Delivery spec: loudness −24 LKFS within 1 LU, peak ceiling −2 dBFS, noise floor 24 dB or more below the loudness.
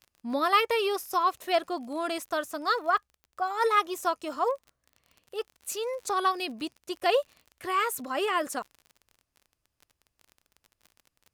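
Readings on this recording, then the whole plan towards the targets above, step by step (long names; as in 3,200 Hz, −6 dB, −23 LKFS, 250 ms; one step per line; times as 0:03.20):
crackle rate 37 per second; integrated loudness −28.5 LKFS; sample peak −9.0 dBFS; target loudness −24.0 LKFS
→ click removal
level +4.5 dB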